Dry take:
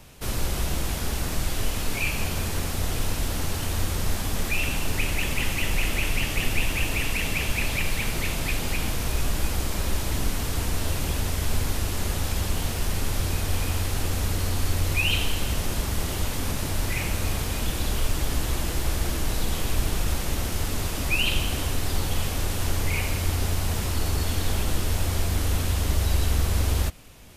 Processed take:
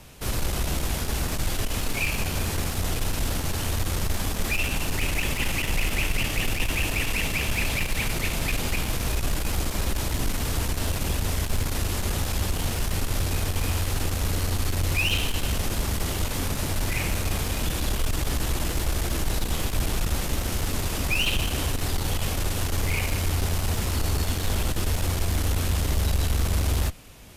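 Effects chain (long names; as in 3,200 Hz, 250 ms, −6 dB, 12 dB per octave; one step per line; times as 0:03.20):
harmonic generator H 5 −17 dB, 6 −23 dB, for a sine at −9.5 dBFS
level −3 dB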